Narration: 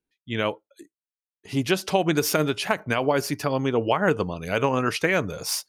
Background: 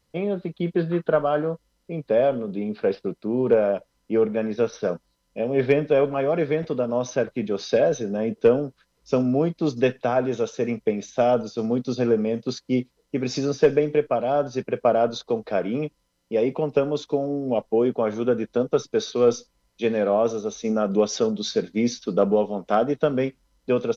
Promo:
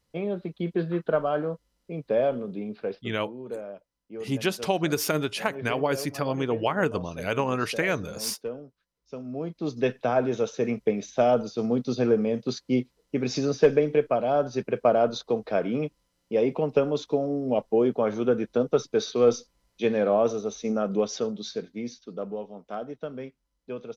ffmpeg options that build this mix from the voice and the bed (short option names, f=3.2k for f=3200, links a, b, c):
-filter_complex "[0:a]adelay=2750,volume=-3.5dB[a];[1:a]volume=11.5dB,afade=t=out:st=2.43:d=0.8:silence=0.223872,afade=t=in:st=9.22:d=0.96:silence=0.16788,afade=t=out:st=20.28:d=1.71:silence=0.237137[b];[a][b]amix=inputs=2:normalize=0"